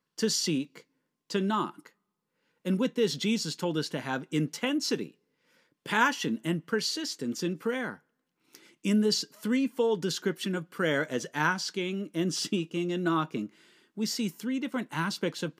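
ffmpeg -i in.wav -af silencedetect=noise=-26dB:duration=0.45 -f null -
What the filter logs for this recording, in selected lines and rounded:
silence_start: 0.61
silence_end: 1.32 | silence_duration: 0.71
silence_start: 1.66
silence_end: 2.67 | silence_duration: 1.01
silence_start: 5.02
silence_end: 5.90 | silence_duration: 0.88
silence_start: 7.90
silence_end: 8.85 | silence_duration: 0.95
silence_start: 13.41
silence_end: 14.01 | silence_duration: 0.60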